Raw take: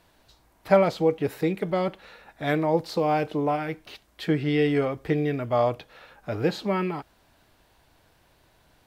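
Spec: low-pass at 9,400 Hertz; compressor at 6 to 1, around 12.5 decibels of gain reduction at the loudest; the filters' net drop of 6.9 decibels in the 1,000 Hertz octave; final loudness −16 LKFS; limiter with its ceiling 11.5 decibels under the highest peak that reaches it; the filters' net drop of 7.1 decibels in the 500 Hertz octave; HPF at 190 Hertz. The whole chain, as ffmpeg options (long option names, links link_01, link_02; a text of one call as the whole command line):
ffmpeg -i in.wav -af "highpass=190,lowpass=9400,equalizer=frequency=500:width_type=o:gain=-6.5,equalizer=frequency=1000:width_type=o:gain=-7,acompressor=threshold=-32dB:ratio=6,volume=25.5dB,alimiter=limit=-5dB:level=0:latency=1" out.wav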